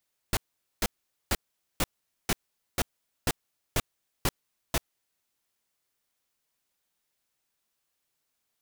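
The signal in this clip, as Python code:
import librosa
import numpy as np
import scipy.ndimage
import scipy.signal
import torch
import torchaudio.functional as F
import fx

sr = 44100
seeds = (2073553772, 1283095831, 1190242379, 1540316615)

y = fx.noise_burst(sr, seeds[0], colour='pink', on_s=0.04, off_s=0.45, bursts=10, level_db=-25.0)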